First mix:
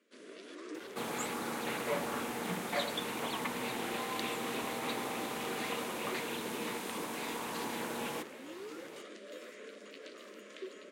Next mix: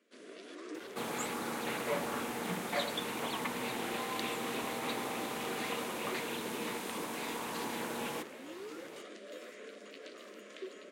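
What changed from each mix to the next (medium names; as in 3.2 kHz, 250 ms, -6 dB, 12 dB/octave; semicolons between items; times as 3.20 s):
first sound: add peaking EQ 720 Hz +5.5 dB 0.21 oct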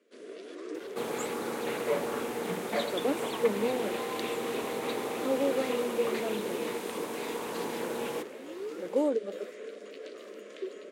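speech: unmuted; master: add peaking EQ 440 Hz +9 dB 0.82 oct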